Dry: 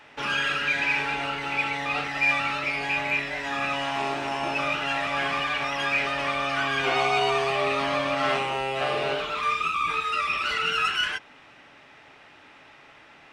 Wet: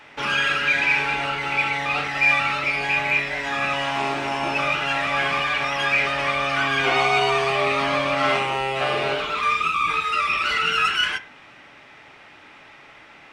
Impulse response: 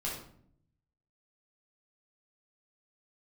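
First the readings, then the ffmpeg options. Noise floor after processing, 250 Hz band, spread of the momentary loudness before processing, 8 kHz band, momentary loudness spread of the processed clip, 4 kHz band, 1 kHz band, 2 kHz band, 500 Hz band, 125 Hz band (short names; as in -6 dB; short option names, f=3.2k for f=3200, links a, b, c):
-47 dBFS, +2.5 dB, 5 LU, +3.5 dB, 5 LU, +4.0 dB, +4.0 dB, +5.0 dB, +3.0 dB, +5.0 dB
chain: -filter_complex "[0:a]asplit=2[a][b];[b]equalizer=f=2.1k:w=1.8:g=12[c];[1:a]atrim=start_sample=2205,asetrate=70560,aresample=44100[d];[c][d]afir=irnorm=-1:irlink=0,volume=-14.5dB[e];[a][e]amix=inputs=2:normalize=0,volume=3dB"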